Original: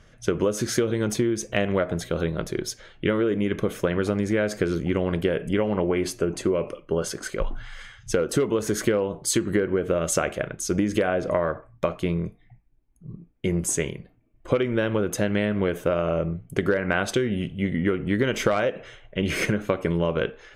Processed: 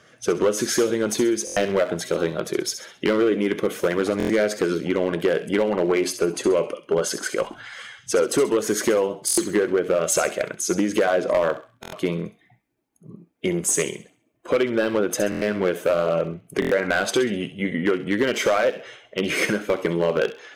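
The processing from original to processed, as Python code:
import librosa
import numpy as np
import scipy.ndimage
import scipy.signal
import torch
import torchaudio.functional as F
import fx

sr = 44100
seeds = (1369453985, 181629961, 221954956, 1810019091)

p1 = fx.spec_quant(x, sr, step_db=15)
p2 = scipy.signal.sosfilt(scipy.signal.butter(2, 260.0, 'highpass', fs=sr, output='sos'), p1)
p3 = fx.rider(p2, sr, range_db=3, speed_s=2.0)
p4 = p2 + (p3 * librosa.db_to_amplitude(-2.0))
p5 = np.clip(p4, -10.0 ** (-13.0 / 20.0), 10.0 ** (-13.0 / 20.0))
p6 = fx.echo_wet_highpass(p5, sr, ms=66, feedback_pct=38, hz=2900.0, wet_db=-9)
y = fx.buffer_glitch(p6, sr, at_s=(1.45, 4.18, 9.26, 11.81, 15.3, 16.6), block=1024, repeats=4)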